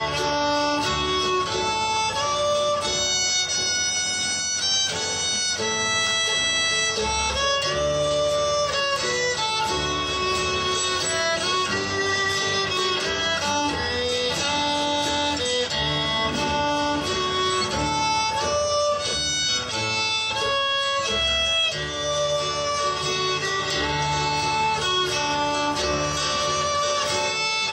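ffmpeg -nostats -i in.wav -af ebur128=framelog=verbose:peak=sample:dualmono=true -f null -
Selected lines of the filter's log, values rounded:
Integrated loudness:
  I:         -18.9 LUFS
  Threshold: -28.9 LUFS
Loudness range:
  LRA:         1.4 LU
  Threshold: -38.9 LUFS
  LRA low:   -19.4 LUFS
  LRA high:  -18.0 LUFS
Sample peak:
  Peak:      -11.5 dBFS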